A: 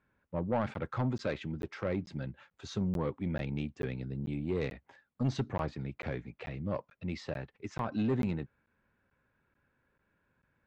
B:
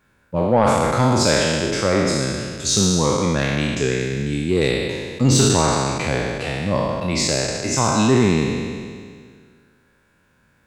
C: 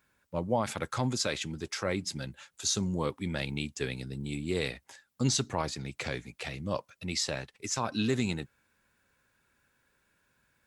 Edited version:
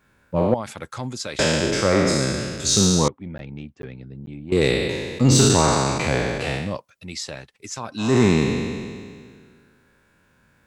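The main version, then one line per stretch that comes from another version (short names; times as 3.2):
B
0.54–1.39 from C
3.08–4.52 from A
6.66–8.09 from C, crossfade 0.24 s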